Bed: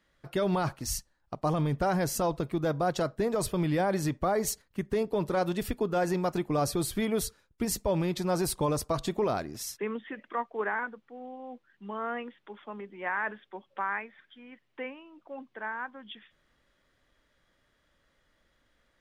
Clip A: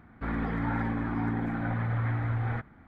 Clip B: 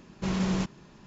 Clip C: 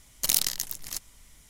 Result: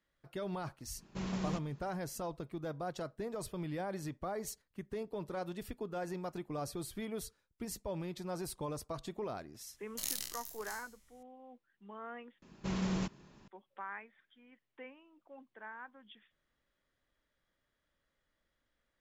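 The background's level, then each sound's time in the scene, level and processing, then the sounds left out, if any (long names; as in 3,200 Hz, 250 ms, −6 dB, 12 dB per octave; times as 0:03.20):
bed −12 dB
0:00.93: mix in B −10 dB, fades 0.10 s
0:09.74: mix in C −17 dB + peak hold with a decay on every bin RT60 0.62 s
0:12.42: overwrite with B −7 dB
not used: A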